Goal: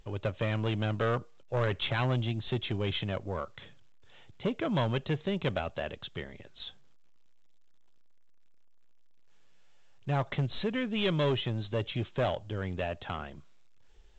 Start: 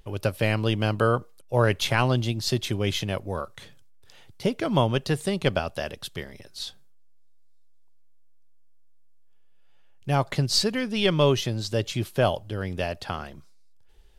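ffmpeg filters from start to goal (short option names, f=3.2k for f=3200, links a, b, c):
-af "aresample=8000,asoftclip=type=tanh:threshold=-20dB,aresample=44100,volume=-3dB" -ar 16000 -c:a pcm_alaw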